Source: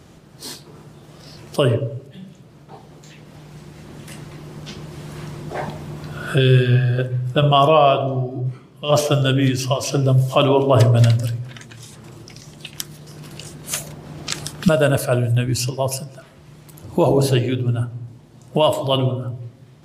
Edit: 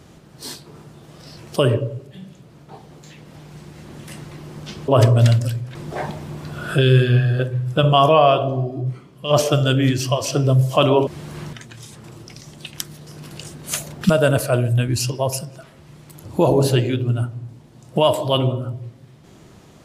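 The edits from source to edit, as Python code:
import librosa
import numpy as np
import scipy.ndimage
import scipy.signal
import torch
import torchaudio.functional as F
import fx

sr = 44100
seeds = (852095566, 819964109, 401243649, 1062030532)

y = fx.edit(x, sr, fx.swap(start_s=4.88, length_s=0.46, other_s=10.66, other_length_s=0.87),
    fx.cut(start_s=14.01, length_s=0.59), tone=tone)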